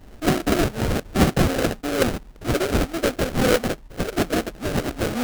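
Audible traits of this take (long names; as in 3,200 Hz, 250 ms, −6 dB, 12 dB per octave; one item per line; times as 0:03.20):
phaser sweep stages 12, 0.97 Hz, lowest notch 640–1,900 Hz
aliases and images of a low sample rate 1,000 Hz, jitter 20%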